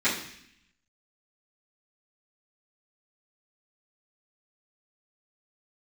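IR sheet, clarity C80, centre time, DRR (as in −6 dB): 9.5 dB, 32 ms, −14.5 dB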